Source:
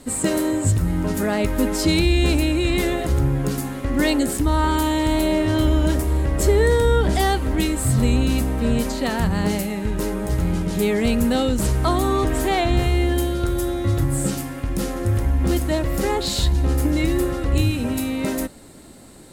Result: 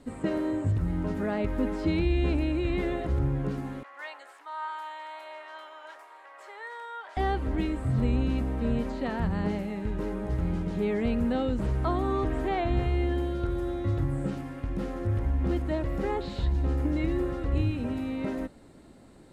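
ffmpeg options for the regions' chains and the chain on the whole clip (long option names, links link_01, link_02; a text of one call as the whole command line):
ffmpeg -i in.wav -filter_complex "[0:a]asettb=1/sr,asplit=3[link_01][link_02][link_03];[link_01]atrim=end=3.834[link_04];[link_02]atrim=start=3.83:end=7.17,asetpts=PTS-STARTPTS,afade=type=in:duration=0.004:curve=qsin,afade=type=out:start_time=3.336:duration=0.004:curve=qsin,highpass=frequency=890:width=0.5412,highpass=frequency=890:width=1.3066,highshelf=frequency=2800:gain=-12[link_05];[link_03]atrim=start=7.166[link_06];[link_04][link_05]acrossfade=duration=0.004:curve1=hsin:curve2=qsin[link_07];[link_07][link_06]acrossfade=duration=0.004:curve1=qsin:curve2=hsin,acrossover=split=3400[link_08][link_09];[link_09]acompressor=threshold=-40dB:ratio=4:attack=1:release=60[link_10];[link_08][link_10]amix=inputs=2:normalize=0,aemphasis=mode=reproduction:type=75kf,volume=-7.5dB" out.wav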